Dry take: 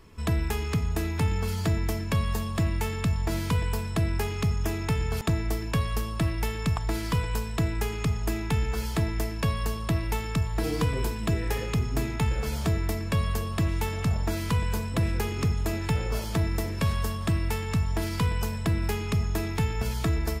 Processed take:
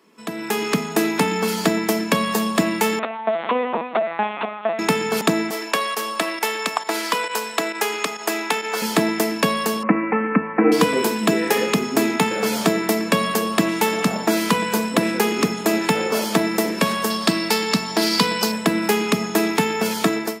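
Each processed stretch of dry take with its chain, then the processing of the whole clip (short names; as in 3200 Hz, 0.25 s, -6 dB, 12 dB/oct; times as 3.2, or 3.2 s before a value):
2.99–4.79 Chebyshev high-pass 460 Hz, order 8 + tilt shelf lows +9.5 dB, about 1200 Hz + LPC vocoder at 8 kHz pitch kept
5.5–8.82 HPF 510 Hz + high shelf 12000 Hz -3.5 dB + pump 135 bpm, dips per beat 1, -11 dB, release 63 ms
9.83–10.72 steep low-pass 2400 Hz 72 dB/oct + comb 3.9 ms, depth 86%
17.1–18.52 HPF 62 Hz + bell 4600 Hz +11.5 dB 0.62 oct
whole clip: elliptic high-pass 200 Hz, stop band 80 dB; AGC gain up to 14.5 dB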